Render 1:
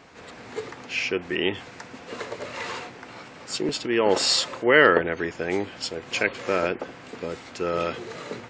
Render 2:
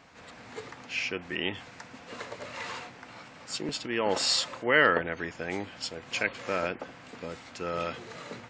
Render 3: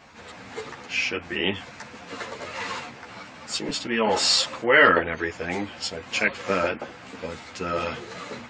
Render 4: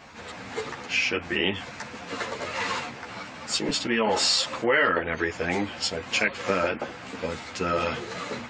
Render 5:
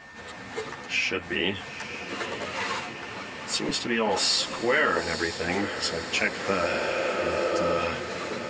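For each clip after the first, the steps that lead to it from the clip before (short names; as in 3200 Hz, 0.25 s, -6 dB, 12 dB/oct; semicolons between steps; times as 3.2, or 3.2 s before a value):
bell 390 Hz -7 dB 0.59 oct; gain -4.5 dB
ensemble effect; gain +9 dB
compressor 3:1, threshold -24 dBFS, peak gain reduction 10 dB; gain +3 dB
spectral repair 6.73–7.71, 260–4200 Hz both; diffused feedback echo 0.917 s, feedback 64%, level -10.5 dB; whine 1800 Hz -45 dBFS; gain -1.5 dB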